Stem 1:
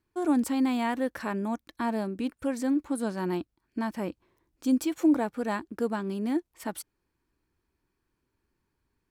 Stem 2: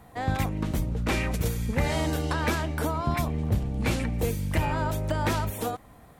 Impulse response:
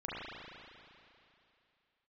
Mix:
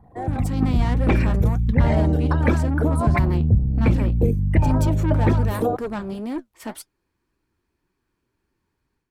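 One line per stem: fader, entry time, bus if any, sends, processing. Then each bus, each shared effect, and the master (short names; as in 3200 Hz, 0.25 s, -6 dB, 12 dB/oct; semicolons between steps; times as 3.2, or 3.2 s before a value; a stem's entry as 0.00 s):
+0.5 dB, 0.00 s, no send, high shelf 9000 Hz -5 dB; flange 1.9 Hz, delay 4.9 ms, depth 6.9 ms, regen +64%; tube stage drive 32 dB, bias 0.3
+0.5 dB, 0.00 s, no send, formant sharpening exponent 2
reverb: off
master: AGC gain up to 8.5 dB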